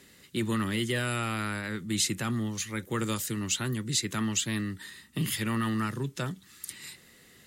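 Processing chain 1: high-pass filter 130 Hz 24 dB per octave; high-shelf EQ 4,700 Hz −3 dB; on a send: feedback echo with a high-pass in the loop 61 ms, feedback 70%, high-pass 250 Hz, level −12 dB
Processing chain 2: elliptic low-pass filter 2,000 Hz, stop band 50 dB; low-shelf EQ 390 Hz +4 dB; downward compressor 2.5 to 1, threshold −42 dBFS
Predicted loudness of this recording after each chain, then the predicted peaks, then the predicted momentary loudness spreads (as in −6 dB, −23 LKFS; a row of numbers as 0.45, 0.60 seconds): −31.5, −41.0 LKFS; −16.0, −27.0 dBFS; 13, 12 LU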